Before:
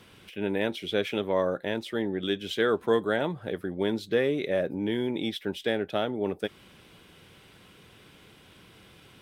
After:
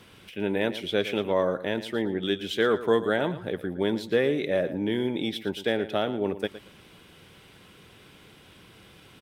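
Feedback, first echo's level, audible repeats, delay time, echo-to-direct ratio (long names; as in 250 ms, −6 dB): 20%, −14.0 dB, 2, 114 ms, −14.0 dB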